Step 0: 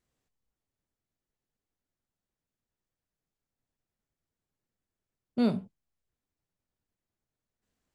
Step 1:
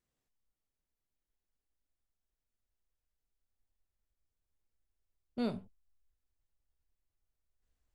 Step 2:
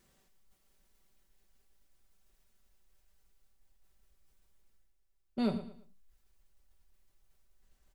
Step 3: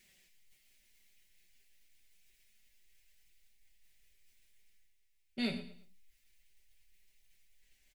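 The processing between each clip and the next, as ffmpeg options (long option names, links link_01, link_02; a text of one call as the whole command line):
ffmpeg -i in.wav -af "asubboost=boost=10:cutoff=54,volume=-5.5dB" out.wav
ffmpeg -i in.wav -af "aecho=1:1:5.2:0.51,areverse,acompressor=mode=upward:threshold=-57dB:ratio=2.5,areverse,aecho=1:1:113|226|339:0.224|0.0694|0.0215,volume=2dB" out.wav
ffmpeg -i in.wav -filter_complex "[0:a]highshelf=frequency=1600:width_type=q:width=3:gain=10,flanger=delay=4.7:depth=8.5:regen=46:speed=0.28:shape=triangular,asplit=2[link_01][link_02];[link_02]adelay=28,volume=-12dB[link_03];[link_01][link_03]amix=inputs=2:normalize=0,volume=-1.5dB" out.wav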